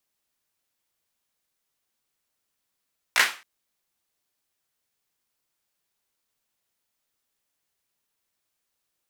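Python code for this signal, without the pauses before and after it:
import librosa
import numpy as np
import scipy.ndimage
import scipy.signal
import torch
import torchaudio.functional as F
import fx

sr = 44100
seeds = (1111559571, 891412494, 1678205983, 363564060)

y = fx.drum_clap(sr, seeds[0], length_s=0.27, bursts=3, spacing_ms=17, hz=1800.0, decay_s=0.34)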